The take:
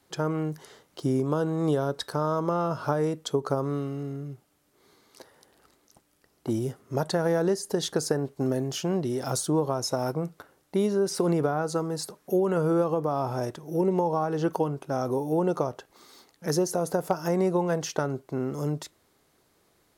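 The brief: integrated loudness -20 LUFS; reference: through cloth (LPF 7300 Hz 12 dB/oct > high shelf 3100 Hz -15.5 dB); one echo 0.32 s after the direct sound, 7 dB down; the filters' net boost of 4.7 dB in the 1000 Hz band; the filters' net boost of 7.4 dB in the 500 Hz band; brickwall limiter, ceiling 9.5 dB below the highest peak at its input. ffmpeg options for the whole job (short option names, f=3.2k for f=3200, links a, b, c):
-af "equalizer=f=500:t=o:g=8.5,equalizer=f=1k:t=o:g=4.5,alimiter=limit=-13.5dB:level=0:latency=1,lowpass=7.3k,highshelf=f=3.1k:g=-15.5,aecho=1:1:320:0.447,volume=4.5dB"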